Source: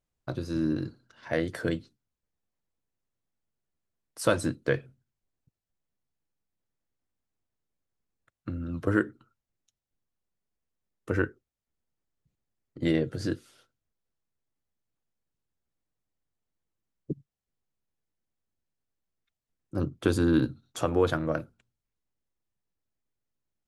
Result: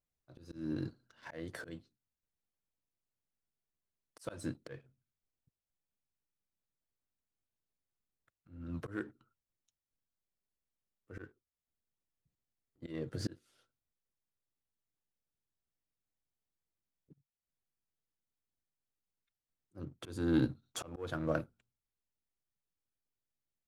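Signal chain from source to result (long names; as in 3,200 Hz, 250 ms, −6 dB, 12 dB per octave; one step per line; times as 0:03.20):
leveller curve on the samples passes 1
volume swells 424 ms
level −6 dB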